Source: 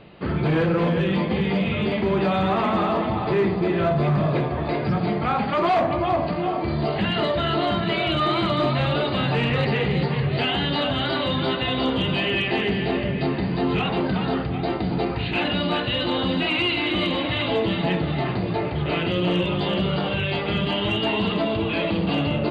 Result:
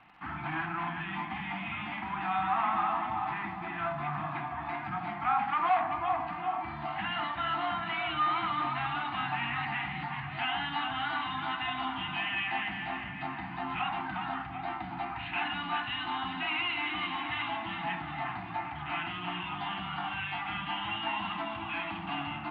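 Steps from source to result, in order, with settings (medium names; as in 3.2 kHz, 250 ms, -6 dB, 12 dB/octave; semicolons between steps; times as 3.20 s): elliptic band-stop 310–750 Hz, stop band 50 dB; three-band isolator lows -19 dB, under 530 Hz, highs -24 dB, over 3.5 kHz; crackle 110 per s -38 dBFS; distance through air 390 m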